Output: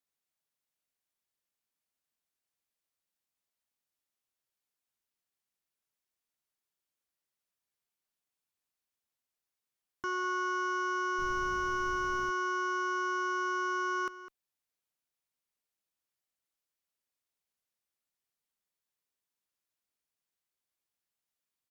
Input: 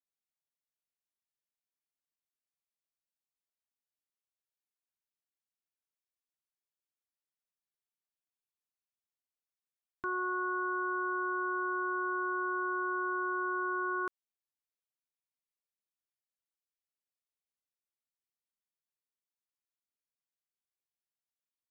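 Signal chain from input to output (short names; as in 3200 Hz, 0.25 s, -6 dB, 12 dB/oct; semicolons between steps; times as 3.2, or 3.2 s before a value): added harmonics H 5 -17 dB, 6 -39 dB, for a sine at -27 dBFS; outdoor echo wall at 35 m, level -14 dB; 11.18–12.29 added noise brown -43 dBFS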